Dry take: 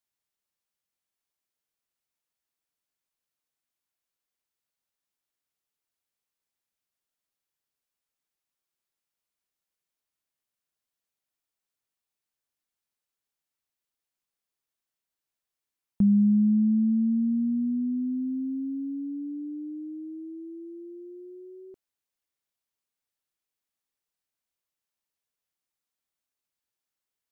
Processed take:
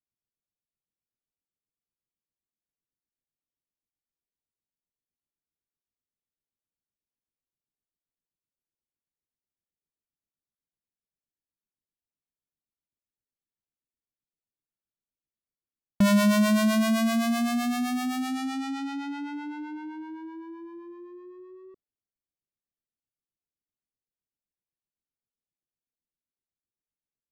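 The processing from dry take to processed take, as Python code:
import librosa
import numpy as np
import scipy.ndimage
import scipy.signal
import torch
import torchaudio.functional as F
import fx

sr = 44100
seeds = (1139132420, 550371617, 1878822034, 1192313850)

y = fx.halfwave_hold(x, sr)
y = fx.env_lowpass(y, sr, base_hz=350.0, full_db=-25.0)
y = fx.harmonic_tremolo(y, sr, hz=7.8, depth_pct=70, crossover_hz=430.0)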